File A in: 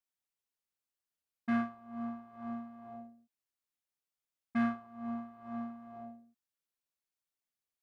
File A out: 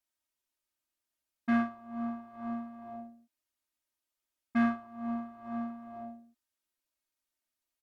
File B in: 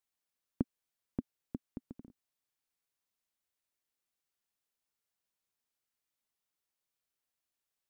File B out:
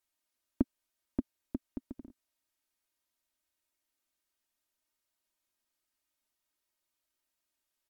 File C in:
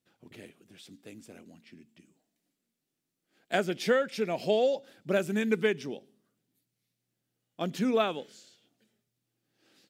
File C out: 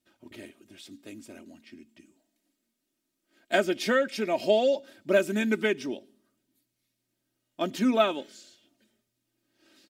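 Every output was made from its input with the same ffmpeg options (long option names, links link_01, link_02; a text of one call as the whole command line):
ffmpeg -i in.wav -af "aecho=1:1:3.2:0.69,volume=2dB" -ar 44100 -c:a libvorbis -b:a 192k out.ogg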